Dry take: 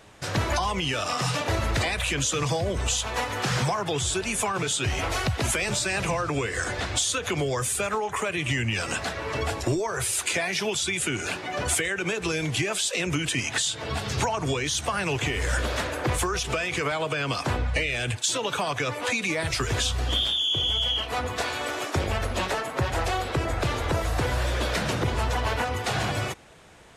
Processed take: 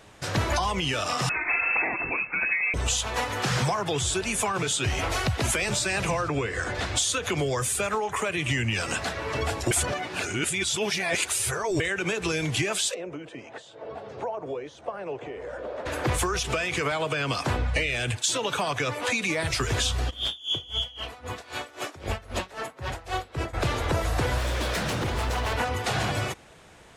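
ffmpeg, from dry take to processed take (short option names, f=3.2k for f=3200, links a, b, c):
-filter_complex "[0:a]asettb=1/sr,asplit=3[a][b][c];[a]atrim=end=1.294[d];[b]atrim=start=1.29:end=2.74,asetpts=PTS-STARTPTS,afade=t=in:d=0.004:c=qsin,afade=t=out:st=1.446:d=0.004:c=qsin,lowpass=f=2.3k:t=q:w=0.5098,lowpass=f=2.3k:t=q:w=0.6013,lowpass=f=2.3k:t=q:w=0.9,lowpass=f=2.3k:t=q:w=2.563,afreqshift=-2700[e];[c]atrim=start=2.736[f];[d][e]acrossfade=d=0.004:c1=hsin:c2=qsin[g];[g][f]acrossfade=d=0.004:c1=qsin:c2=hsin,asettb=1/sr,asplit=3[h][i][j];[h]atrim=end=6.284[k];[i]atrim=start=6.28:end=6.75,asetpts=PTS-STARTPTS,afade=t=in:d=0.004:c=qsin,afade=t=out:st=0.466:d=0.004:c=qsin,lowpass=f=3.1k:p=1[l];[j]atrim=start=6.746[m];[k][l]acrossfade=d=0.004:c1=hsin:c2=qsin[n];[n][m]acrossfade=d=0.004:c1=qsin:c2=hsin,asplit=3[o][p][q];[o]afade=t=out:st=12.93:d=0.02[r];[p]bandpass=f=540:t=q:w=2,afade=t=in:st=12.93:d=0.02,afade=t=out:st=15.85:d=0.02[s];[q]afade=t=in:st=15.85:d=0.02[t];[r][s][t]amix=inputs=3:normalize=0,asplit=3[u][v][w];[u]afade=t=out:st=20.09:d=0.02[x];[v]aeval=exprs='val(0)*pow(10,-22*(0.5-0.5*cos(2*PI*3.8*n/s))/20)':c=same,afade=t=in:st=20.09:d=0.02,afade=t=out:st=23.53:d=0.02[y];[w]afade=t=in:st=23.53:d=0.02[z];[x][y][z]amix=inputs=3:normalize=0,asettb=1/sr,asplit=3[aa][ab][ac];[aa]atrim=end=24.384[ad];[ab]atrim=start=24.38:end=25.53,asetpts=PTS-STARTPTS,afade=t=in:d=0.004:c=qsin,afade=t=out:st=1.146:d=0.004:c=qsin,aeval=exprs='0.0794*(abs(mod(val(0)/0.0794+3,4)-2)-1)':c=same[ae];[ac]atrim=start=25.526[af];[ad][ae]acrossfade=d=0.004:c1=hsin:c2=qsin[ag];[ag][af]acrossfade=d=0.004:c1=qsin:c2=hsin,asplit=3[ah][ai][aj];[ah]atrim=end=9.712[ak];[ai]atrim=start=9.708:end=11.802,asetpts=PTS-STARTPTS,areverse[al];[aj]atrim=start=11.798[am];[ak][al]acrossfade=d=0.004:c1=hsin:c2=hsin[an];[an][am]acrossfade=d=0.004:c1=hsin:c2=hsin"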